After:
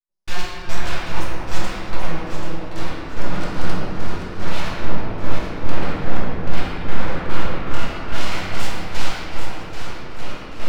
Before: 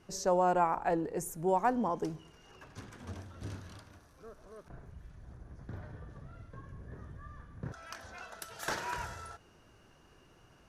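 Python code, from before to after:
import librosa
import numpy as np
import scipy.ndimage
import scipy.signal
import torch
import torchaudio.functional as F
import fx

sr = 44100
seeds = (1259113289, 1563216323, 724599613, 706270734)

y = fx.recorder_agc(x, sr, target_db=-19.5, rise_db_per_s=8.4, max_gain_db=30)
y = fx.hum_notches(y, sr, base_hz=50, count=3)
y = fx.fold_sine(y, sr, drive_db=17, ceiling_db=-12.5)
y = scipy.signal.savgol_filter(y, 15, 4, mode='constant')
y = np.abs(y)
y = fx.step_gate(y, sr, bpm=109, pattern='..x..xx.x', floor_db=-60.0, edge_ms=4.5)
y = fx.echo_alternate(y, sr, ms=392, hz=900.0, feedback_pct=58, wet_db=-3.0)
y = fx.room_shoebox(y, sr, seeds[0], volume_m3=120.0, walls='hard', distance_m=0.87)
y = y * librosa.db_to_amplitude(-10.5)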